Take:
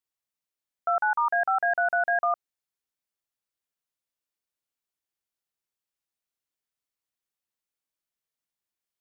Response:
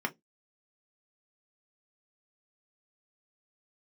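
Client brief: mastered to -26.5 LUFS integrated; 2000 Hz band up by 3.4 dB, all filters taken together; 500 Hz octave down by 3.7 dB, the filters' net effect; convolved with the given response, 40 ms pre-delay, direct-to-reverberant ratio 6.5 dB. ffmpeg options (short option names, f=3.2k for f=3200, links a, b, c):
-filter_complex "[0:a]equalizer=f=500:t=o:g=-8,equalizer=f=2k:t=o:g=6,asplit=2[a][b];[1:a]atrim=start_sample=2205,adelay=40[c];[b][c]afir=irnorm=-1:irlink=0,volume=-13dB[d];[a][d]amix=inputs=2:normalize=0,volume=-3.5dB"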